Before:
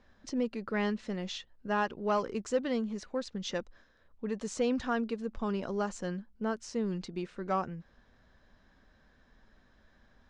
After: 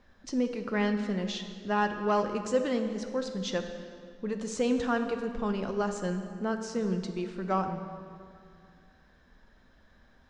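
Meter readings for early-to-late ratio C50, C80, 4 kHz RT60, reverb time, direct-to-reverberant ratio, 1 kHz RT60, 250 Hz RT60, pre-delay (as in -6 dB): 7.5 dB, 8.5 dB, 1.7 s, 2.3 s, 6.0 dB, 2.2 s, 2.5 s, 5 ms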